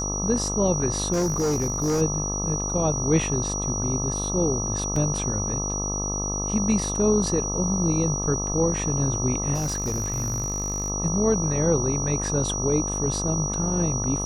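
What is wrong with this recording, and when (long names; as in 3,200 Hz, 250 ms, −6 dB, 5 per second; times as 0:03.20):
mains buzz 50 Hz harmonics 26 −30 dBFS
whistle 5,800 Hz −28 dBFS
0:01.12–0:02.02: clipping −20 dBFS
0:04.96: drop-out 2.7 ms
0:09.54–0:10.90: clipping −22.5 dBFS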